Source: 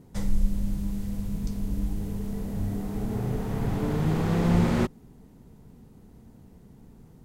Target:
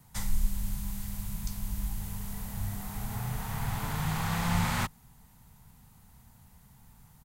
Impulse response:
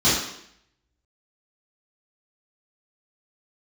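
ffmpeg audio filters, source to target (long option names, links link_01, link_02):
-filter_complex "[0:a]firequalizer=gain_entry='entry(120,0);entry(340,-18);entry(850,6);entry(2100,7);entry(5300,-3)':delay=0.05:min_phase=1,acrossover=split=200|670|3200[link_01][link_02][link_03][link_04];[link_04]crystalizer=i=4.5:c=0[link_05];[link_01][link_02][link_03][link_05]amix=inputs=4:normalize=0,volume=-4dB"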